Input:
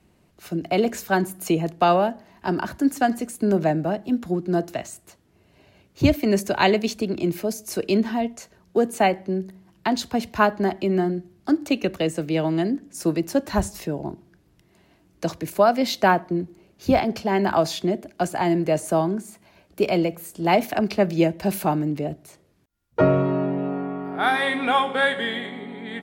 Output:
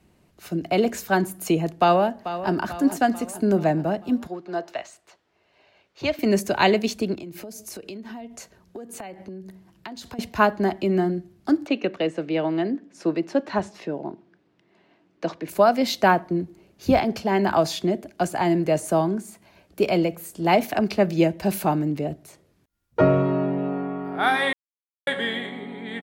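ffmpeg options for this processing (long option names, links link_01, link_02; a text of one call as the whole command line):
ffmpeg -i in.wav -filter_complex "[0:a]asplit=2[link_01][link_02];[link_02]afade=type=in:start_time=1.76:duration=0.01,afade=type=out:start_time=2.52:duration=0.01,aecho=0:1:440|880|1320|1760|2200|2640:0.251189|0.138154|0.0759846|0.0417915|0.0229853|0.0126419[link_03];[link_01][link_03]amix=inputs=2:normalize=0,asettb=1/sr,asplit=3[link_04][link_05][link_06];[link_04]atrim=end=4.274[link_07];[link_05]atrim=start=4.27:end=6.19,asetpts=PTS-STARTPTS,afade=type=in:duration=0.004:curve=qsin,afade=type=out:start_time=1.916:duration=0.004:curve=qsin,acrossover=split=460 5800:gain=0.126 1 0.112[link_08][link_09][link_10];[link_08][link_09][link_10]amix=inputs=3:normalize=0[link_11];[link_06]atrim=start=6.186[link_12];[link_07][link_11]acrossfade=duration=0.004:curve1=hsin:curve2=qsin[link_13];[link_13][link_12]acrossfade=duration=0.004:curve1=qsin:curve2=hsin,asettb=1/sr,asplit=3[link_14][link_15][link_16];[link_14]atrim=end=7.144[link_17];[link_15]atrim=start=7.14:end=10.19,asetpts=PTS-STARTPTS,afade=type=in:duration=0.004:curve=qsin,afade=type=out:start_time=3.046:duration=0.004:curve=qsin,acompressor=threshold=-33dB:ratio=16:attack=3.2:release=140:knee=1:detection=peak[link_18];[link_16]atrim=start=10.186[link_19];[link_17][link_18]acrossfade=duration=0.004:curve1=hsin:curve2=qsin[link_20];[link_20][link_19]acrossfade=duration=0.004:curve1=qsin:curve2=hsin,asplit=3[link_21][link_22][link_23];[link_21]afade=type=out:start_time=11.65:duration=0.02[link_24];[link_22]highpass=230,lowpass=3500,afade=type=in:start_time=11.65:duration=0.02,afade=type=out:start_time=15.48:duration=0.02[link_25];[link_23]afade=type=in:start_time=15.48:duration=0.02[link_26];[link_24][link_25][link_26]amix=inputs=3:normalize=0,asplit=3[link_27][link_28][link_29];[link_27]atrim=end=24.53,asetpts=PTS-STARTPTS,afade=type=out:start_time=24.526:duration=0.004:curve=hsin[link_30];[link_28]atrim=start=24.53:end=25.07,asetpts=PTS-STARTPTS,volume=0[link_31];[link_29]atrim=start=25.07,asetpts=PTS-STARTPTS,afade=type=in:duration=0.004:curve=hsin[link_32];[link_30][link_31][link_32]concat=n=3:v=0:a=1" out.wav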